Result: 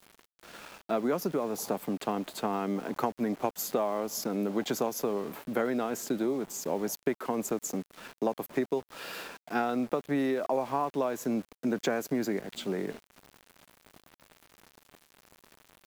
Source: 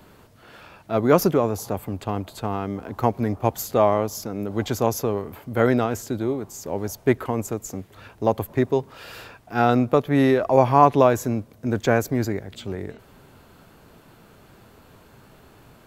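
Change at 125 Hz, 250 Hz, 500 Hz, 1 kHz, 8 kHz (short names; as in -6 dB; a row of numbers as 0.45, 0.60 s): -17.0, -7.5, -9.5, -11.0, -3.0 dB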